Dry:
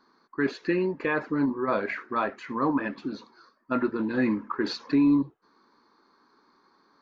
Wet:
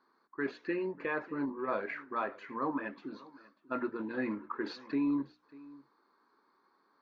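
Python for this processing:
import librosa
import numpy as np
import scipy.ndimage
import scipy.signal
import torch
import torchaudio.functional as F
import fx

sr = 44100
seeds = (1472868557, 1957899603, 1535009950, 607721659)

y = fx.bass_treble(x, sr, bass_db=-7, treble_db=-10)
y = fx.hum_notches(y, sr, base_hz=60, count=5)
y = y + 10.0 ** (-21.0 / 20.0) * np.pad(y, (int(592 * sr / 1000.0), 0))[:len(y)]
y = y * 10.0 ** (-7.0 / 20.0)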